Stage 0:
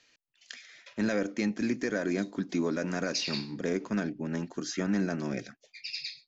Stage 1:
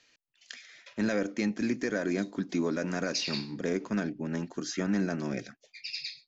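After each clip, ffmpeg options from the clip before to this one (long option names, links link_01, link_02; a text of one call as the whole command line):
ffmpeg -i in.wav -af anull out.wav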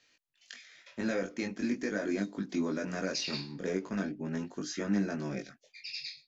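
ffmpeg -i in.wav -af "flanger=delay=19.5:depth=2.1:speed=0.43" out.wav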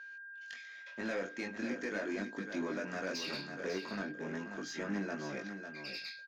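ffmpeg -i in.wav -filter_complex "[0:a]aeval=exprs='val(0)+0.00447*sin(2*PI*1600*n/s)':channel_layout=same,asplit=2[link_01][link_02];[link_02]highpass=frequency=720:poles=1,volume=15dB,asoftclip=type=tanh:threshold=-19dB[link_03];[link_01][link_03]amix=inputs=2:normalize=0,lowpass=frequency=2600:poles=1,volume=-6dB,aecho=1:1:549:0.376,volume=-7.5dB" out.wav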